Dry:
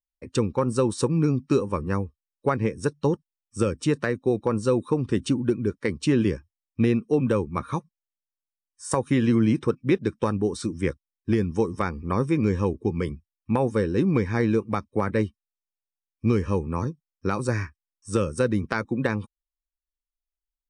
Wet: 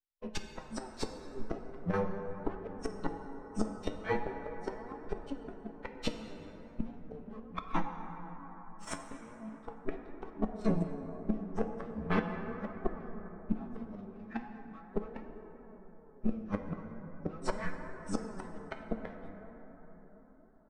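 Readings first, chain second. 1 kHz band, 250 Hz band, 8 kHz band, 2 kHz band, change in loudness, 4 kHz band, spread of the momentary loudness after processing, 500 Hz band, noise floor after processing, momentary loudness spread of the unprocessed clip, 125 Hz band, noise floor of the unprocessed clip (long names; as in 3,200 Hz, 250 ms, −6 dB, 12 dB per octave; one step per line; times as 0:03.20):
−9.5 dB, −14.0 dB, −14.0 dB, −11.0 dB, −14.5 dB, −10.0 dB, 15 LU, −15.0 dB, −55 dBFS, 8 LU, −17.0 dB, below −85 dBFS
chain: lower of the sound and its delayed copy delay 4.6 ms
Bessel low-pass filter 3,700 Hz, order 2
flanger 0.14 Hz, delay 9.6 ms, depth 1.4 ms, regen 0%
double-tracking delay 18 ms −3 dB
square-wave tremolo 6.2 Hz, depth 60%, duty 85%
gate with flip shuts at −22 dBFS, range −25 dB
parametric band 120 Hz −13.5 dB 0.29 octaves
noise reduction from a noise print of the clip's start 7 dB
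dense smooth reverb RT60 4.8 s, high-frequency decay 0.3×, DRR 4.5 dB
flanger 0.39 Hz, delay 2.5 ms, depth 8 ms, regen +57%
level +8 dB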